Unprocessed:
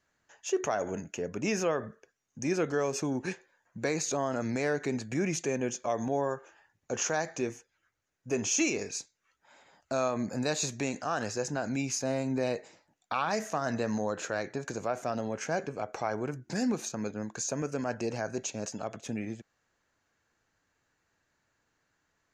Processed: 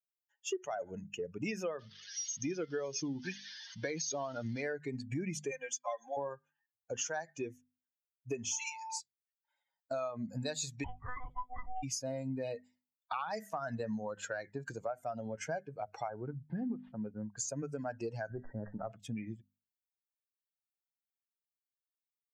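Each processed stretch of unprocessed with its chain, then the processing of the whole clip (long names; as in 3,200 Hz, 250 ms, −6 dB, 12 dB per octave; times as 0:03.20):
0:01.79–0:04.62: spike at every zero crossing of −26 dBFS + linear-phase brick-wall low-pass 6,600 Hz
0:05.51–0:06.17: high-pass filter 670 Hz + comb filter 3.8 ms, depth 79%
0:08.51–0:08.98: guitar amp tone stack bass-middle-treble 10-0-10 + steady tone 890 Hz −41 dBFS
0:10.84–0:11.83: low-pass filter 1,000 Hz 6 dB per octave + ring modulation 480 Hz + one-pitch LPC vocoder at 8 kHz 250 Hz
0:16.08–0:17.37: variable-slope delta modulation 32 kbit/s + low-pass filter 1,600 Hz
0:18.30–0:18.92: gain on one half-wave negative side −3 dB + linear-phase brick-wall low-pass 2,000 Hz + envelope flattener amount 50%
whole clip: spectral dynamics exaggerated over time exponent 2; mains-hum notches 50/100/150/200/250 Hz; downward compressor 5 to 1, threshold −43 dBFS; level +7.5 dB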